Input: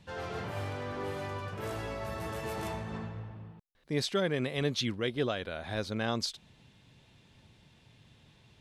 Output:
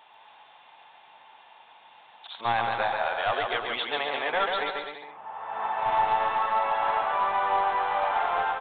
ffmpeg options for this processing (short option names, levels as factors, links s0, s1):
-filter_complex "[0:a]areverse,highpass=f=820:t=q:w=4.9,asplit=2[s0][s1];[s1]alimiter=level_in=1.26:limit=0.0631:level=0:latency=1:release=183,volume=0.794,volume=1.26[s2];[s0][s2]amix=inputs=2:normalize=0,equalizer=f=1200:w=1.5:g=4,aresample=8000,aeval=exprs='clip(val(0),-1,0.0891)':c=same,aresample=44100,aecho=1:1:140|252|341.6|413.3|470.6:0.631|0.398|0.251|0.158|0.1,volume=0.841"